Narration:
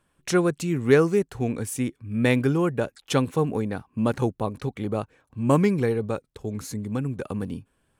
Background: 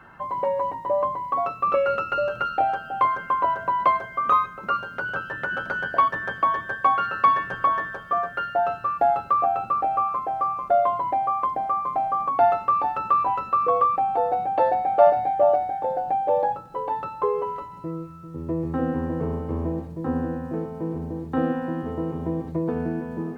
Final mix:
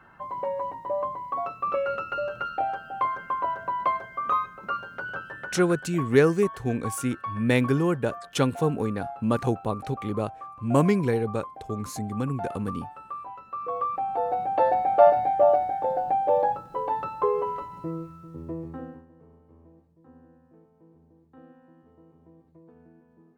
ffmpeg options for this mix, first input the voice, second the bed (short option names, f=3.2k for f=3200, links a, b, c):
-filter_complex "[0:a]adelay=5250,volume=-1dB[a];[1:a]volume=10.5dB,afade=t=out:st=5.13:d=0.76:silence=0.281838,afade=t=in:st=13.44:d=1.33:silence=0.158489,afade=t=out:st=17.83:d=1.22:silence=0.0446684[b];[a][b]amix=inputs=2:normalize=0"